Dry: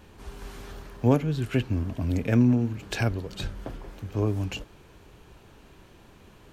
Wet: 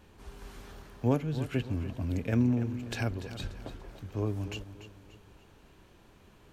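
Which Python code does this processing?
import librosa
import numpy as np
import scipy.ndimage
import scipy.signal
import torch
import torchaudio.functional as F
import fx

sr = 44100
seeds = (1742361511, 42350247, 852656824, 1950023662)

y = fx.echo_feedback(x, sr, ms=291, feedback_pct=41, wet_db=-12.5)
y = y * 10.0 ** (-6.0 / 20.0)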